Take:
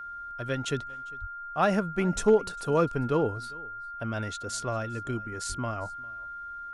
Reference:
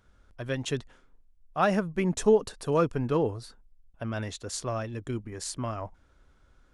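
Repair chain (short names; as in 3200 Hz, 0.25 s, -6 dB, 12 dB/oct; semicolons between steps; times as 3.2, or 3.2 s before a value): clip repair -12.5 dBFS; notch 1400 Hz, Q 30; 1.2–1.32 HPF 140 Hz 24 dB/oct; 2.14–2.26 HPF 140 Hz 24 dB/oct; 5.48–5.6 HPF 140 Hz 24 dB/oct; inverse comb 0.401 s -23.5 dB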